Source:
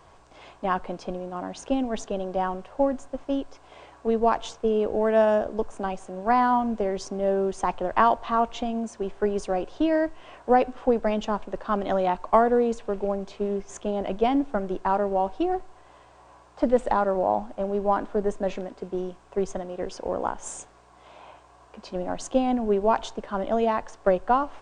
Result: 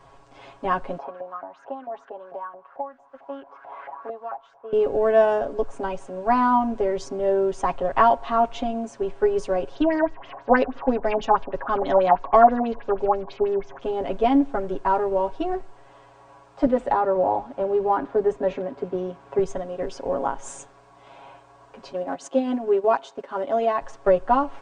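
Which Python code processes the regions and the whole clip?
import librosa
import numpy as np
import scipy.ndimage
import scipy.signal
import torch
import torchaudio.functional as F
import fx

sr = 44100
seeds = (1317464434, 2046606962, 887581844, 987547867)

y = fx.chain(x, sr, fx.filter_lfo_bandpass(shape='saw_up', hz=4.5, low_hz=680.0, high_hz=1700.0, q=4.3),
    fx.band_squash(depth_pct=100), at=(0.98, 4.73))
y = fx.chain(y, sr, fx.filter_lfo_lowpass(shape='sine', hz=6.2, low_hz=740.0, high_hz=7500.0, q=4.9),
    fx.air_absorb(metres=120.0),
    fx.notch(hz=1300.0, q=27.0), at=(9.75, 13.82))
y = fx.chain(y, sr, fx.highpass(hz=42.0, slope=12),
    fx.high_shelf(hz=5600.0, db=-11.0),
    fx.band_squash(depth_pct=40), at=(16.66, 19.39))
y = fx.chain(y, sr, fx.highpass(hz=250.0, slope=12),
    fx.transient(attack_db=-2, sustain_db=-7), at=(21.92, 23.81))
y = fx.high_shelf(y, sr, hz=4400.0, db=-6.0)
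y = y + 0.87 * np.pad(y, (int(7.3 * sr / 1000.0), 0))[:len(y)]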